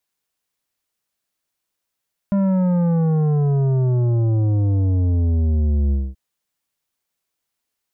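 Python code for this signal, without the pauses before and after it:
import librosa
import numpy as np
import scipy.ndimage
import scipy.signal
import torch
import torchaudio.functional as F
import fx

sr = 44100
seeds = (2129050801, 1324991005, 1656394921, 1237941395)

y = fx.sub_drop(sr, level_db=-16.0, start_hz=200.0, length_s=3.83, drive_db=10, fade_s=0.23, end_hz=65.0)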